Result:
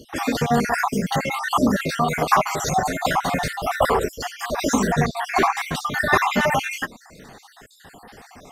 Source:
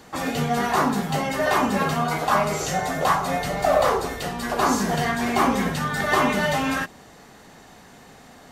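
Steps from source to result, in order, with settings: random holes in the spectrogram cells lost 54%; 4.92–5.57 s: treble shelf 8.8 kHz -9 dB; phaser 1.8 Hz, delay 4.4 ms, feedback 32%; trim +4.5 dB

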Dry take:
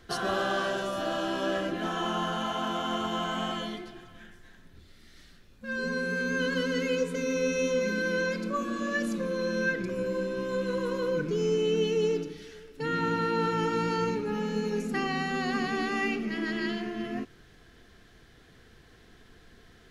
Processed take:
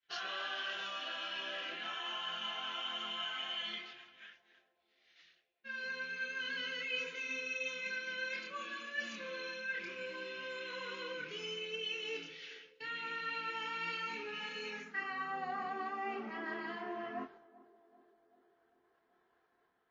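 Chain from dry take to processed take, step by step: band-pass sweep 2.6 kHz -> 950 Hz, 14.62–15.40 s; reverse; compression 4:1, threshold -45 dBFS, peak gain reduction 10.5 dB; reverse; chorus voices 6, 0.3 Hz, delay 27 ms, depth 4.4 ms; expander -60 dBFS; on a send: band-passed feedback delay 388 ms, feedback 69%, band-pass 460 Hz, level -19 dB; on the sum: trim +10 dB; MP3 32 kbps 16 kHz

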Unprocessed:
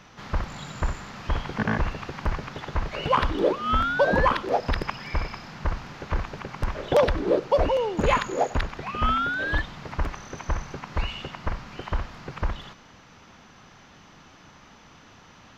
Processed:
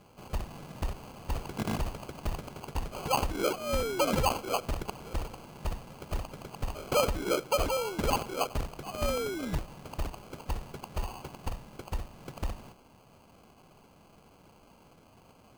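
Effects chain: 11.49–12.18 s: peaking EQ 3.6 kHz -6.5 dB 2.1 oct; sample-and-hold 24×; trim -7 dB

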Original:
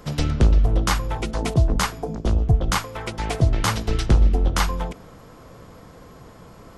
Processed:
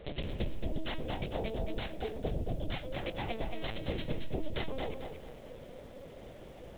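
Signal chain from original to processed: bass shelf 77 Hz -9 dB; compression 6:1, threshold -30 dBFS, peak gain reduction 14.5 dB; static phaser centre 490 Hz, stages 4; LPC vocoder at 8 kHz pitch kept; bit-crushed delay 224 ms, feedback 35%, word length 10-bit, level -5.5 dB

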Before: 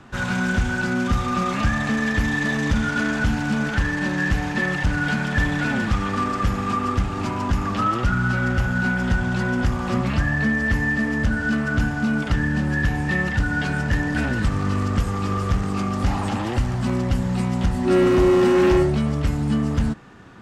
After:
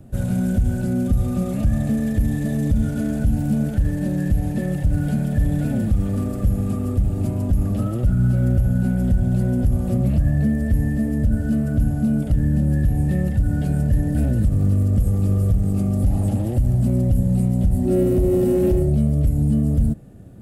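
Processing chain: FFT filter 100 Hz 0 dB, 420 Hz -11 dB, 610 Hz -6 dB, 990 Hz -29 dB, 6 kHz -20 dB, 11 kHz +3 dB; peak limiter -19 dBFS, peak gain reduction 7 dB; trim +8.5 dB

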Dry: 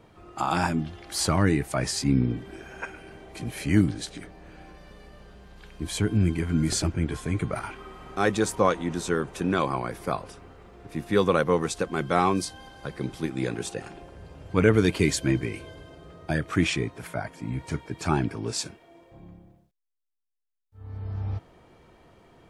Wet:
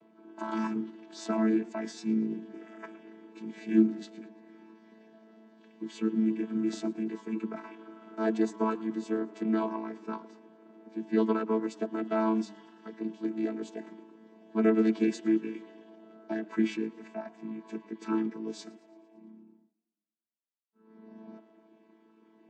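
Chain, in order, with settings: vocoder on a held chord bare fifth, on A3; modulated delay 113 ms, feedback 56%, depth 108 cents, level -24 dB; trim -3.5 dB

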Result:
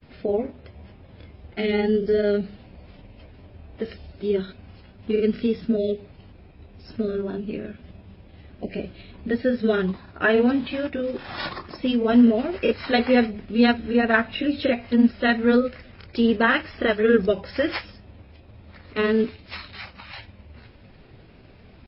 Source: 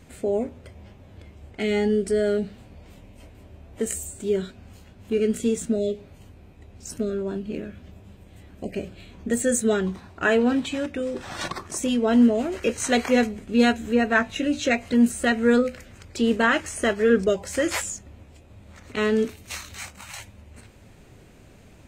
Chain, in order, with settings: granulator 100 ms, grains 20 per s, spray 20 ms, pitch spread up and down by 0 st; trim +2.5 dB; MP3 24 kbps 12 kHz

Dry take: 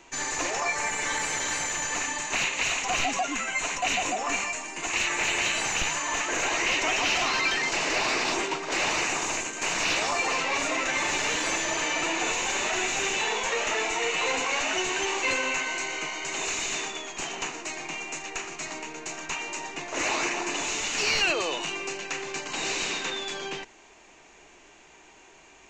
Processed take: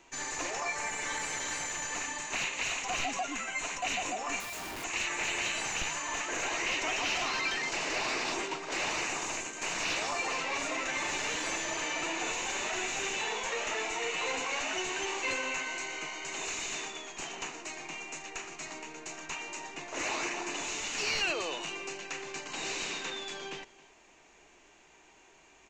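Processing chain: delay 272 ms -21 dB; 4.40–4.84 s: Schmitt trigger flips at -40 dBFS; trim -6.5 dB

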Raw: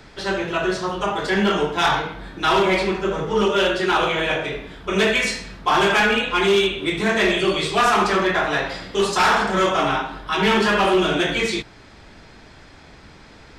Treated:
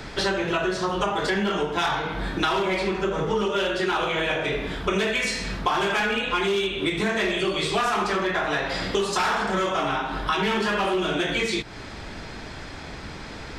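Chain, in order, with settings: compression 16:1, threshold -29 dBFS, peak gain reduction 15.5 dB; trim +8 dB

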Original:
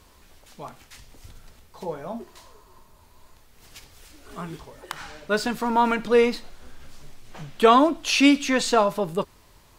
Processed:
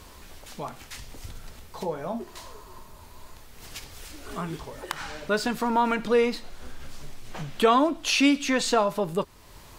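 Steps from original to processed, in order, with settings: compression 1.5:1, threshold -44 dBFS, peak gain reduction 12 dB; trim +7 dB

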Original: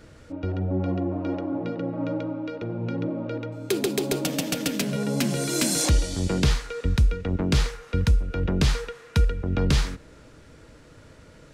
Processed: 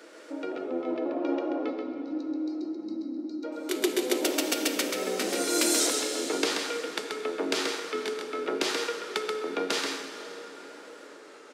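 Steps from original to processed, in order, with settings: pitch shift switched off and on -1.5 st, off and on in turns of 527 ms; steep high-pass 300 Hz 36 dB/octave; in parallel at -1.5 dB: compression, threshold -38 dBFS, peak gain reduction 16.5 dB; on the sum: time-frequency box 1.70–3.44 s, 400–3800 Hz -29 dB; on a send: delay 132 ms -5 dB; on the sum: plate-style reverb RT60 4.9 s, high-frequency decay 0.6×, DRR 6 dB; trim -2.5 dB

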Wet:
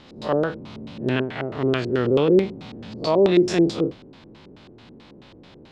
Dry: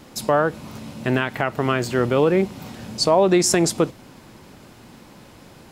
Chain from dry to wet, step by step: spectral blur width 84 ms; LFO low-pass square 4.6 Hz 400–3700 Hz; trim -1.5 dB

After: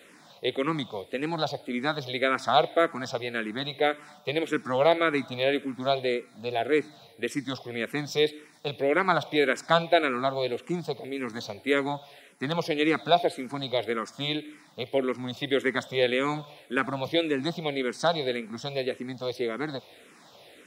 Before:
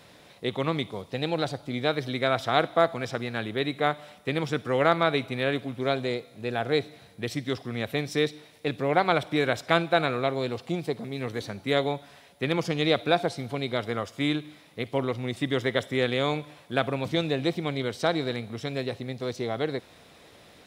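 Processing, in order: high-pass 190 Hz 12 dB/octave; barber-pole phaser -1.8 Hz; trim +3.5 dB

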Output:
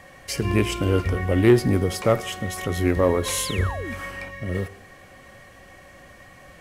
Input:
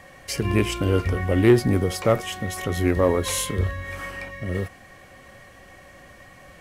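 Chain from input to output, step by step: Schroeder reverb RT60 1.1 s, DRR 18 dB; painted sound fall, 3.44–3.94 s, 200–5700 Hz -34 dBFS

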